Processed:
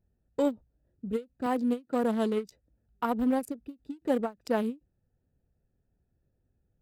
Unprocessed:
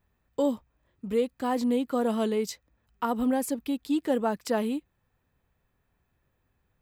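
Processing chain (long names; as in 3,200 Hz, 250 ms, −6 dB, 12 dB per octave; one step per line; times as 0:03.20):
adaptive Wiener filter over 41 samples
0:01.46–0:02.04: high-pass filter 150 Hz
every ending faded ahead of time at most 330 dB per second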